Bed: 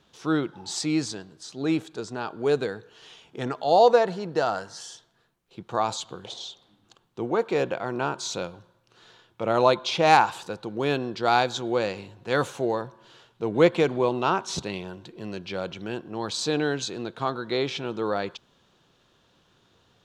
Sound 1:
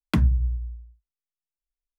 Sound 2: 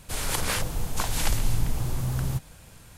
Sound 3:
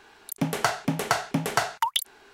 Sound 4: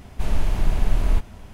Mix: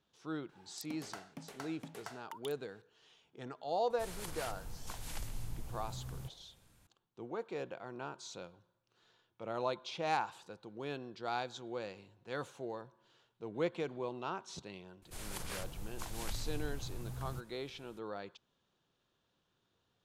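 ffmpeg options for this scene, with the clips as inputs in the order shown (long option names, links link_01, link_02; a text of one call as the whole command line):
ffmpeg -i bed.wav -i cue0.wav -i cue1.wav -i cue2.wav -filter_complex "[2:a]asplit=2[link_01][link_02];[0:a]volume=-16.5dB[link_03];[3:a]acompressor=threshold=-30dB:ratio=2.5:attack=10:release=787:knee=1:detection=peak,atrim=end=2.33,asetpts=PTS-STARTPTS,volume=-16dB,afade=type=in:duration=0.004:curve=hsin,afade=type=out:start_time=2.326:duration=0.004:curve=hsin,adelay=490[link_04];[link_01]atrim=end=2.97,asetpts=PTS-STARTPTS,volume=-17.5dB,afade=type=in:duration=0.004:curve=hsin,afade=type=out:start_time=2.966:duration=0.004:curve=hsin,adelay=3900[link_05];[link_02]atrim=end=2.97,asetpts=PTS-STARTPTS,volume=-16dB,afade=type=in:duration=0.004:curve=hsin,afade=type=out:start_time=2.966:duration=0.004:curve=hsin,adelay=15020[link_06];[link_03][link_04][link_05][link_06]amix=inputs=4:normalize=0" out.wav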